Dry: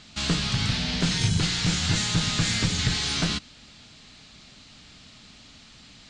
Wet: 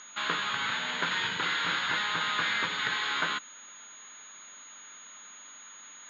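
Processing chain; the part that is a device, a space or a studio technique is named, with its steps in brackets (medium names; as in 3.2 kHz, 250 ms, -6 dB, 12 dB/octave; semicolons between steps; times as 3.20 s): toy sound module (decimation joined by straight lines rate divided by 4×; class-D stage that switches slowly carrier 6.7 kHz; cabinet simulation 690–4200 Hz, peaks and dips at 710 Hz -8 dB, 1 kHz +5 dB, 1.5 kHz +5 dB, 2.6 kHz -5 dB, 3.7 kHz +5 dB); 1.05–1.79 s: flutter echo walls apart 10.5 m, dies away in 0.55 s; trim +3.5 dB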